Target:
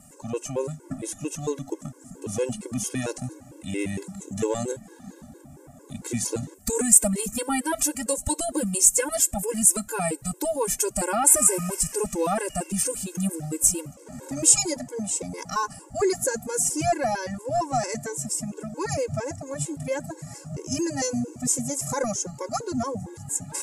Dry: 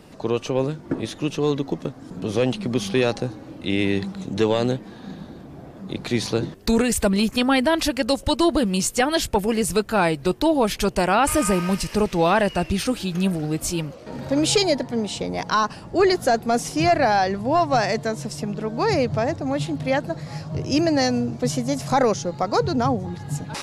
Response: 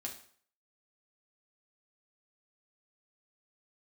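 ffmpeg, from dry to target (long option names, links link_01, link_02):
-filter_complex "[0:a]highshelf=frequency=5600:width_type=q:width=3:gain=12.5,asplit=2[link_01][link_02];[1:a]atrim=start_sample=2205[link_03];[link_02][link_03]afir=irnorm=-1:irlink=0,volume=-19.5dB[link_04];[link_01][link_04]amix=inputs=2:normalize=0,afftfilt=real='re*gt(sin(2*PI*4.4*pts/sr)*(1-2*mod(floor(b*sr/1024/280),2)),0)':imag='im*gt(sin(2*PI*4.4*pts/sr)*(1-2*mod(floor(b*sr/1024/280),2)),0)':win_size=1024:overlap=0.75,volume=-4.5dB"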